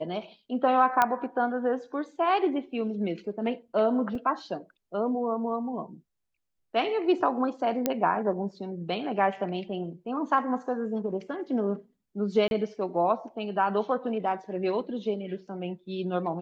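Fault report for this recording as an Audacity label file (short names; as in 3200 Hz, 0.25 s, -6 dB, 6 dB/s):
1.020000	1.020000	pop -9 dBFS
4.150000	4.150000	gap 2.7 ms
7.860000	7.860000	pop -10 dBFS
12.480000	12.510000	gap 31 ms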